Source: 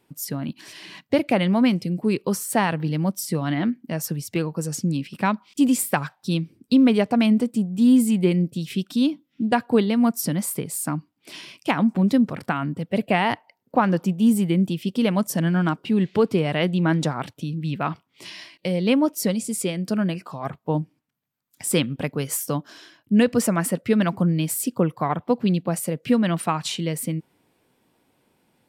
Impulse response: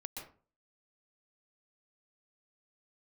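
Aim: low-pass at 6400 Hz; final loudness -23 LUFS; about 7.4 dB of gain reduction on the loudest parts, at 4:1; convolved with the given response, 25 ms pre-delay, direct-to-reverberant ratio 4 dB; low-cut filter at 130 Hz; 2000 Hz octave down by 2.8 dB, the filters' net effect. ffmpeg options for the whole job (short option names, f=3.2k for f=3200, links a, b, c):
-filter_complex "[0:a]highpass=130,lowpass=6.4k,equalizer=f=2k:t=o:g=-3.5,acompressor=threshold=-22dB:ratio=4,asplit=2[a][b];[1:a]atrim=start_sample=2205,adelay=25[c];[b][c]afir=irnorm=-1:irlink=0,volume=-2dB[d];[a][d]amix=inputs=2:normalize=0,volume=3.5dB"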